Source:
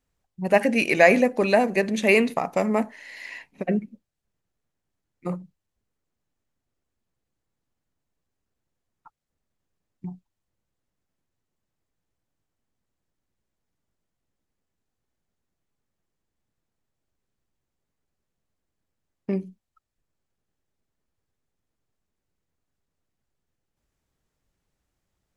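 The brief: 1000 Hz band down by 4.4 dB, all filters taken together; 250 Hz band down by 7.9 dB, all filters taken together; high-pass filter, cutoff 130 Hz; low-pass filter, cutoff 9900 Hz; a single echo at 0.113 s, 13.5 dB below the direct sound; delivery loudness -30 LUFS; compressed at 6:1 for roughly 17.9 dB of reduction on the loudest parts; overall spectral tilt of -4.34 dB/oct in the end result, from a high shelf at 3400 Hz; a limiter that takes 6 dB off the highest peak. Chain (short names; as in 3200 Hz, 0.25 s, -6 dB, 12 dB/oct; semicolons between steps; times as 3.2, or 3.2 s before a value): HPF 130 Hz; LPF 9900 Hz; bell 250 Hz -9 dB; bell 1000 Hz -5.5 dB; high shelf 3400 Hz -8 dB; compressor 6:1, threshold -35 dBFS; limiter -28.5 dBFS; echo 0.113 s -13.5 dB; gain +11.5 dB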